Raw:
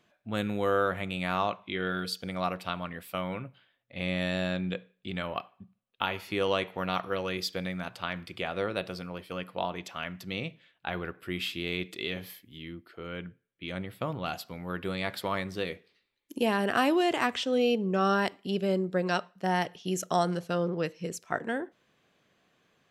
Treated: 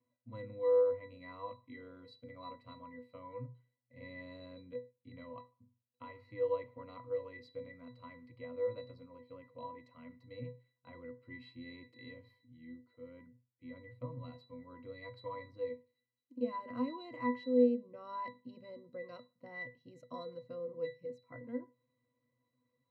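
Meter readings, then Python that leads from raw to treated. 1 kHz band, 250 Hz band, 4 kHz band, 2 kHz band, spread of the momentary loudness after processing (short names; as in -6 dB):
-15.0 dB, -9.5 dB, -23.5 dB, -18.0 dB, 18 LU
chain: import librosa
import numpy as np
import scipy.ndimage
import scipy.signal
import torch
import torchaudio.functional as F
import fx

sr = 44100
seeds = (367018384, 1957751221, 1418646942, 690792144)

y = fx.hum_notches(x, sr, base_hz=50, count=4)
y = fx.octave_resonator(y, sr, note='B', decay_s=0.25)
y = y * librosa.db_to_amplitude(2.5)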